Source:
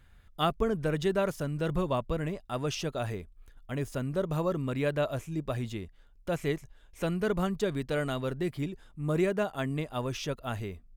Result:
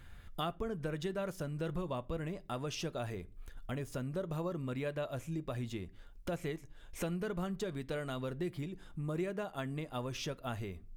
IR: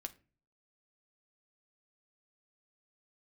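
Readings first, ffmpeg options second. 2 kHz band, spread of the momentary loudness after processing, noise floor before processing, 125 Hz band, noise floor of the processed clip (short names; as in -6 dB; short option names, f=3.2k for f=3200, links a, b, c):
-8.0 dB, 6 LU, -57 dBFS, -6.5 dB, -55 dBFS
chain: -filter_complex "[0:a]acompressor=threshold=-45dB:ratio=3,asplit=2[a][b];[1:a]atrim=start_sample=2205[c];[b][c]afir=irnorm=-1:irlink=0,volume=2.5dB[d];[a][d]amix=inputs=2:normalize=0"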